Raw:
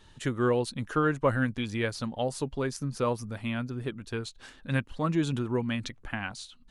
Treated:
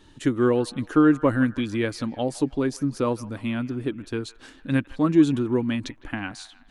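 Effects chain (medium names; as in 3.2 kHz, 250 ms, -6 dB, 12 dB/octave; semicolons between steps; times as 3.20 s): peaking EQ 300 Hz +12.5 dB 0.52 oct; feedback echo behind a band-pass 159 ms, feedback 50%, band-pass 1.4 kHz, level -17.5 dB; trim +1.5 dB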